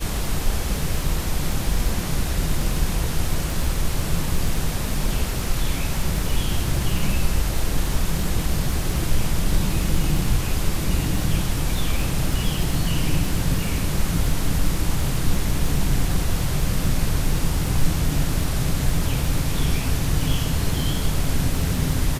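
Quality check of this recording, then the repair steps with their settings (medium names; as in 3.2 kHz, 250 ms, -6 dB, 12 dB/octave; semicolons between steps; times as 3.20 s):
crackle 31 per s -25 dBFS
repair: de-click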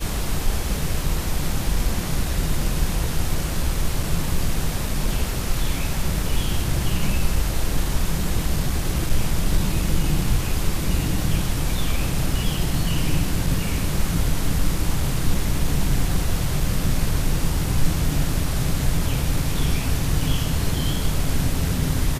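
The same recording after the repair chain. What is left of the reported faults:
nothing left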